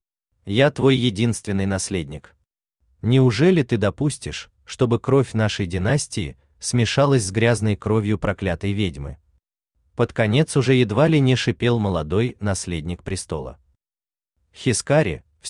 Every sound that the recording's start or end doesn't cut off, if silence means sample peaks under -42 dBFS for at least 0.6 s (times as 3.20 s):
3.03–9.15 s
9.98–13.55 s